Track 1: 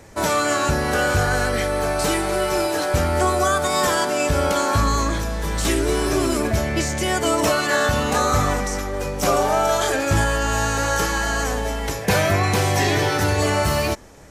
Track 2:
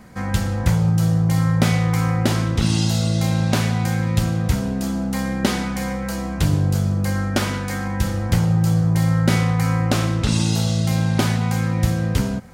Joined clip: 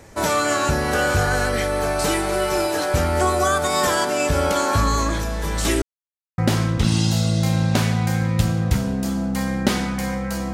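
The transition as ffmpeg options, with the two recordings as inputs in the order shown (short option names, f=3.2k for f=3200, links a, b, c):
-filter_complex "[0:a]apad=whole_dur=10.53,atrim=end=10.53,asplit=2[a][b];[a]atrim=end=5.82,asetpts=PTS-STARTPTS,afade=t=out:st=5.816:d=0.004:c=hsin[c];[b]atrim=start=5.82:end=6.38,asetpts=PTS-STARTPTS,volume=0[d];[1:a]atrim=start=2.16:end=6.31,asetpts=PTS-STARTPTS,afade=t=in:d=0.004:c=hsin[e];[c][d][e]concat=n=3:v=0:a=1"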